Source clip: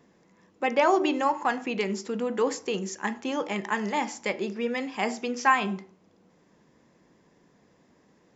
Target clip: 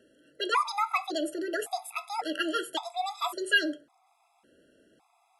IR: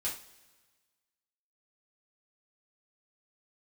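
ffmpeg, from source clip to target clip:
-af "asetrate=68355,aresample=44100,afftfilt=real='re*gt(sin(2*PI*0.9*pts/sr)*(1-2*mod(floor(b*sr/1024/670),2)),0)':imag='im*gt(sin(2*PI*0.9*pts/sr)*(1-2*mod(floor(b*sr/1024/670),2)),0)':win_size=1024:overlap=0.75"

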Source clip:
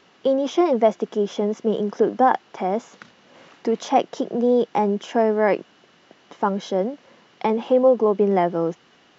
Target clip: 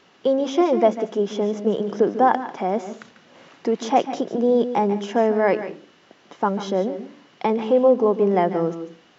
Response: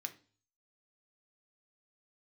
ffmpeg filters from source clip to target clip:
-filter_complex "[0:a]asplit=2[s0][s1];[1:a]atrim=start_sample=2205,lowshelf=f=330:g=9,adelay=144[s2];[s1][s2]afir=irnorm=-1:irlink=0,volume=0.355[s3];[s0][s3]amix=inputs=2:normalize=0"

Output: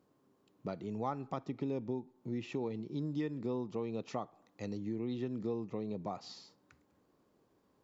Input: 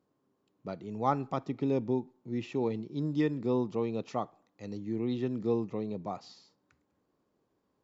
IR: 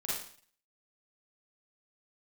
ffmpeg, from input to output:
-af "acompressor=threshold=0.00794:ratio=3,volume=1.68"

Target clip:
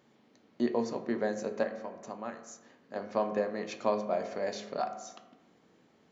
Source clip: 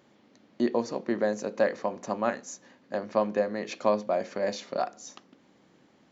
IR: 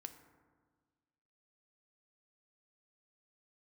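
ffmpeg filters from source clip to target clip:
-filter_complex "[0:a]asettb=1/sr,asplit=3[s0][s1][s2];[s0]atrim=end=1.634[s3];[s1]atrim=start=1.63:end=2.96,asetpts=PTS-STARTPTS,afade=t=in:d=0.004:c=qsin,afade=t=out:st=1.326:d=0.004:c=qsin,acompressor=threshold=0.00562:ratio=1.5[s4];[s2]atrim=start=2.956[s5];[s3][s4]acrossfade=d=0.004:c1=hsin:c2=qsin[s6];[s6][s5]acrossfade=d=0.004:c1=qsin:c2=hsin[s7];[1:a]atrim=start_sample=2205,asetrate=66150,aresample=44100[s8];[s7][s8]afir=irnorm=-1:irlink=0,volume=1.78"

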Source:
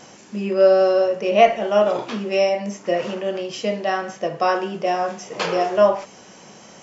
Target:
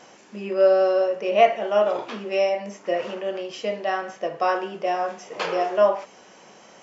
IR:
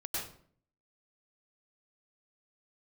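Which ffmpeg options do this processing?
-af "bass=f=250:g=-10,treble=f=4000:g=-6,volume=0.75"

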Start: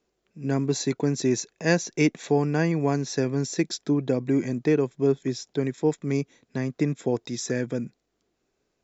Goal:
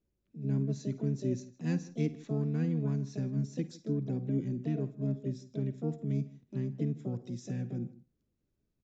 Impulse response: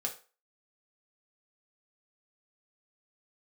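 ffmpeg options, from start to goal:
-filter_complex "[0:a]firequalizer=gain_entry='entry(110,0);entry(610,-28);entry(860,-20)':delay=0.05:min_phase=1,asplit=2[s0][s1];[s1]acompressor=threshold=0.00708:ratio=16,volume=0.794[s2];[s0][s2]amix=inputs=2:normalize=0,asplit=2[s3][s4];[s4]adelay=157.4,volume=0.1,highshelf=f=4000:g=-3.54[s5];[s3][s5]amix=inputs=2:normalize=0,asplit=2[s6][s7];[1:a]atrim=start_sample=2205,adelay=51[s8];[s7][s8]afir=irnorm=-1:irlink=0,volume=0.168[s9];[s6][s9]amix=inputs=2:normalize=0,asplit=2[s10][s11];[s11]asetrate=66075,aresample=44100,atempo=0.66742,volume=0.447[s12];[s10][s12]amix=inputs=2:normalize=0,aresample=16000,aresample=44100,volume=0.708"

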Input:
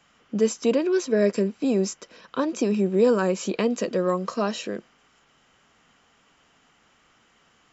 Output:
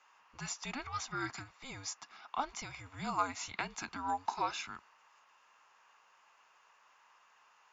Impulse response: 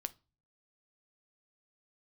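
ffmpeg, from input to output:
-af "highpass=f=1300:t=q:w=2.4,afreqshift=-280,volume=0.422"

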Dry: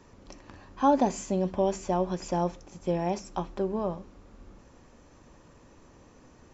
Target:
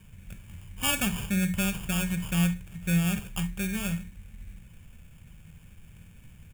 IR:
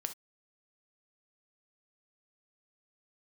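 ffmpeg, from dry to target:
-filter_complex "[0:a]highshelf=f=6100:g=11,bandreject=f=60:t=h:w=6,bandreject=f=120:t=h:w=6,bandreject=f=180:t=h:w=6,acrusher=samples=22:mix=1:aa=0.000001,firequalizer=gain_entry='entry(180,0);entry(270,-22);entry(1100,-21);entry(2100,-2);entry(4600,-18);entry(7400,-4)':delay=0.05:min_phase=1,asplit=2[s0][s1];[1:a]atrim=start_sample=2205[s2];[s1][s2]afir=irnorm=-1:irlink=0,volume=2.37[s3];[s0][s3]amix=inputs=2:normalize=0,volume=0.891"

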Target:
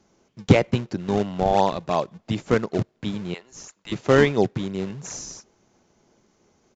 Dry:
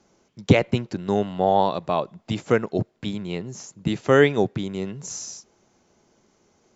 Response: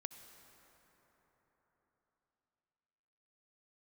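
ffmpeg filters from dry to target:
-filter_complex "[0:a]asettb=1/sr,asplit=3[s0][s1][s2];[s0]atrim=end=3.344[s3];[s1]atrim=start=3.34:end=3.92,asetpts=PTS-STARTPTS,afade=t=in:d=0.004:c=qsin,afade=t=out:st=0.576:d=0.004:c=qsin,highpass=980[s4];[s2]atrim=start=3.916[s5];[s3][s4]acrossfade=d=0.004:c1=hsin:c2=qsin[s6];[s6][s5]acrossfade=d=0.004:c1=qsin:c2=hsin,asplit=2[s7][s8];[s8]acrusher=samples=38:mix=1:aa=0.000001:lfo=1:lforange=60.8:lforate=2.9,volume=0.355[s9];[s7][s9]amix=inputs=2:normalize=0,aresample=16000,aresample=44100,volume=0.841"

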